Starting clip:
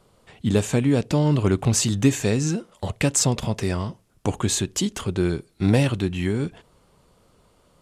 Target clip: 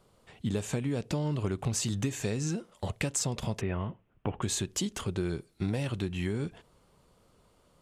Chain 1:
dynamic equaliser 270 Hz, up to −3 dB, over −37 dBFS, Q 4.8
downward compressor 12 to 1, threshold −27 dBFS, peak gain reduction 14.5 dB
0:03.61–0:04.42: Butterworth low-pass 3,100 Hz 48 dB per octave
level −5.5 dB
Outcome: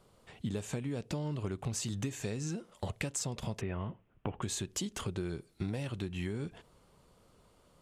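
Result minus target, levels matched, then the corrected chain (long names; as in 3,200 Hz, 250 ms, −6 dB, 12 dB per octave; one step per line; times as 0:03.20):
downward compressor: peak gain reduction +5.5 dB
dynamic equaliser 270 Hz, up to −3 dB, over −37 dBFS, Q 4.8
downward compressor 12 to 1, threshold −21 dBFS, peak gain reduction 9 dB
0:03.61–0:04.42: Butterworth low-pass 3,100 Hz 48 dB per octave
level −5.5 dB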